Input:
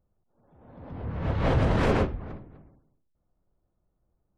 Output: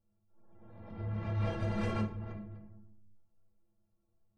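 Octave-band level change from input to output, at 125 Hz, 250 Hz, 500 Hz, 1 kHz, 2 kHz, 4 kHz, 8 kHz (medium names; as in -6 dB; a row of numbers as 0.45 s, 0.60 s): -7.5 dB, -8.0 dB, -12.5 dB, -12.0 dB, -11.5 dB, -11.0 dB, no reading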